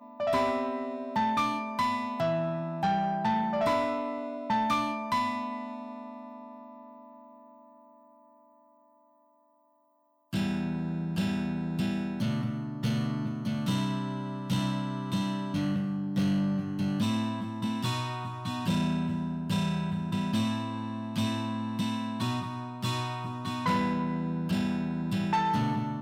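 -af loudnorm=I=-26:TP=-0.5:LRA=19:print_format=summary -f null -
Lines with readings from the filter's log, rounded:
Input Integrated:    -30.5 LUFS
Input True Peak:     -20.8 dBTP
Input LRA:             7.9 LU
Input Threshold:     -41.2 LUFS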